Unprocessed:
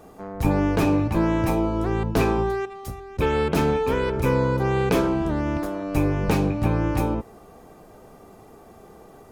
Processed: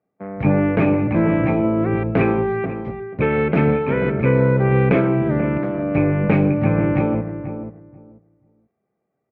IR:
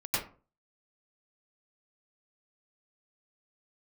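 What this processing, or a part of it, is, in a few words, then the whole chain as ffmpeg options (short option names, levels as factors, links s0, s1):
bass cabinet: -filter_complex "[0:a]agate=range=0.0224:threshold=0.0126:ratio=16:detection=peak,highpass=f=75:w=0.5412,highpass=f=75:w=1.3066,equalizer=f=81:t=q:w=4:g=-7,equalizer=f=140:t=q:w=4:g=6,equalizer=f=210:t=q:w=4:g=5,equalizer=f=580:t=q:w=4:g=4,equalizer=f=960:t=q:w=4:g=-6,equalizer=f=2200:t=q:w=4:g=9,lowpass=f=2400:w=0.5412,lowpass=f=2400:w=1.3066,asplit=2[s0][s1];[s1]adelay=486,lowpass=f=880:p=1,volume=0.376,asplit=2[s2][s3];[s3]adelay=486,lowpass=f=880:p=1,volume=0.18,asplit=2[s4][s5];[s5]adelay=486,lowpass=f=880:p=1,volume=0.18[s6];[s0][s2][s4][s6]amix=inputs=4:normalize=0,volume=1.33"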